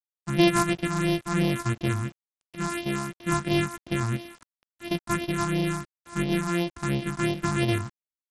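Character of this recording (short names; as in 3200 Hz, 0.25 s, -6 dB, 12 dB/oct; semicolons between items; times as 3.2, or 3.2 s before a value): a buzz of ramps at a fixed pitch in blocks of 128 samples; phasing stages 4, 2.9 Hz, lowest notch 490–1400 Hz; a quantiser's noise floor 8-bit, dither none; SBC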